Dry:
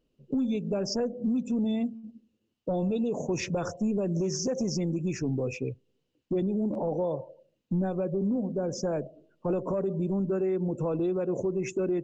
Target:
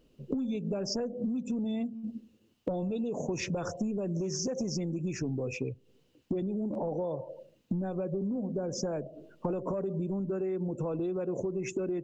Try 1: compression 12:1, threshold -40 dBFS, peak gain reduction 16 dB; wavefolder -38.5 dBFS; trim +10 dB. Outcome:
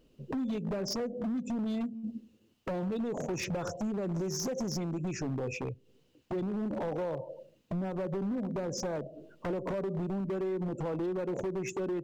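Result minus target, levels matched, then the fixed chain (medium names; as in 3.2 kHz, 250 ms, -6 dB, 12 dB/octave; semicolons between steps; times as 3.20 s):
wavefolder: distortion +38 dB
compression 12:1, threshold -40 dBFS, peak gain reduction 16 dB; wavefolder -28 dBFS; trim +10 dB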